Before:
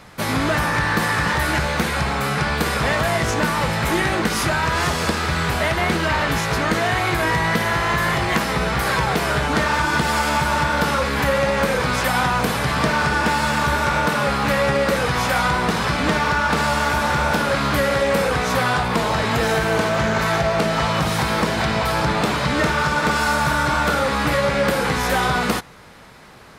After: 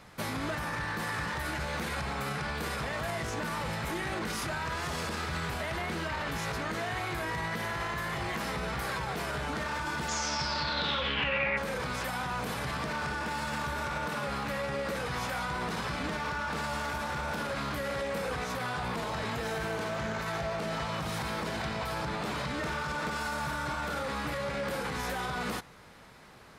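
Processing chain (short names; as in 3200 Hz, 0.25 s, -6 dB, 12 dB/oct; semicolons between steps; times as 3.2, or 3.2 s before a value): limiter -16.5 dBFS, peak gain reduction 10.5 dB; 10.08–11.56 synth low-pass 6800 Hz -> 2200 Hz, resonance Q 9; gain -9 dB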